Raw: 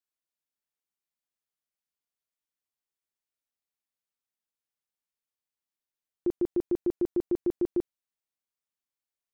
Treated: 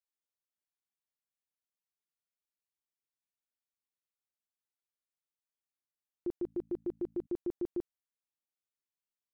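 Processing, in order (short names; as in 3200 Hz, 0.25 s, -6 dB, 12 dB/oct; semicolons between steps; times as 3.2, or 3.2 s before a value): 6.32–7.27 de-hum 55.12 Hz, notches 5; gain -8 dB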